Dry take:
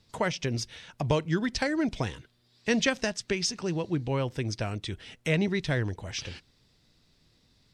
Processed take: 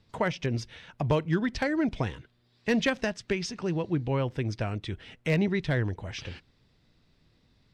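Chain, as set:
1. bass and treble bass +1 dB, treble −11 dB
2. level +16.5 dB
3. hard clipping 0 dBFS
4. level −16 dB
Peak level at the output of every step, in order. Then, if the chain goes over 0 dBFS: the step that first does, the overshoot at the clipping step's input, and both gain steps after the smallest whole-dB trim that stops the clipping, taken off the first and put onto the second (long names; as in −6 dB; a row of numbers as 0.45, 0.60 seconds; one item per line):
−10.0, +6.5, 0.0, −16.0 dBFS
step 2, 6.5 dB
step 2 +9.5 dB, step 4 −9 dB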